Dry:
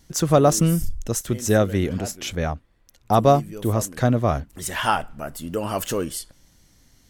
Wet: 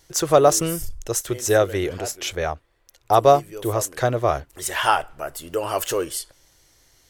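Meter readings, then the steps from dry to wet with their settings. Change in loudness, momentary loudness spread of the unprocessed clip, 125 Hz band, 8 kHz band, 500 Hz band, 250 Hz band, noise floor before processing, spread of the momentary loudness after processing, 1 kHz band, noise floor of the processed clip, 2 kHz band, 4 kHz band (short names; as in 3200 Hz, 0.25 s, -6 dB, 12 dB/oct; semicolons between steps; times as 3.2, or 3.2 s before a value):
+0.5 dB, 12 LU, -7.0 dB, +2.5 dB, +2.5 dB, -6.0 dB, -58 dBFS, 13 LU, +2.5 dB, -61 dBFS, +2.5 dB, +2.5 dB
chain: EQ curve 130 Hz 0 dB, 220 Hz -11 dB, 360 Hz +8 dB; gain -5.5 dB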